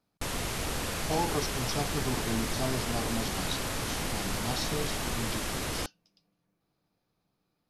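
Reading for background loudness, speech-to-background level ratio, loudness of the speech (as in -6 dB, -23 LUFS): -33.0 LUFS, -3.0 dB, -36.0 LUFS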